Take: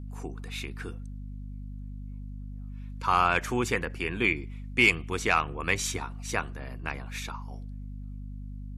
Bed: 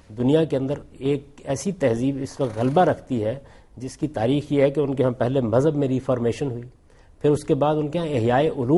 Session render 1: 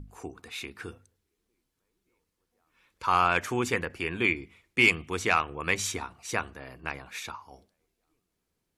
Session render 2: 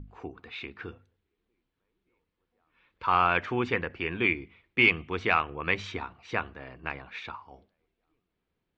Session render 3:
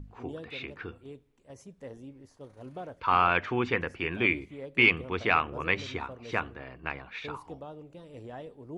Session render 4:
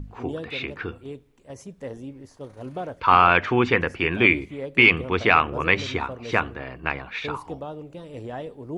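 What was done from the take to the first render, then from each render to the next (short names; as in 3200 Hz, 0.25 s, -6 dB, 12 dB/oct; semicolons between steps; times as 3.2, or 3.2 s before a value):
notches 50/100/150/200/250 Hz
LPF 3600 Hz 24 dB/oct
add bed -23.5 dB
gain +8.5 dB; limiter -3 dBFS, peak gain reduction 3 dB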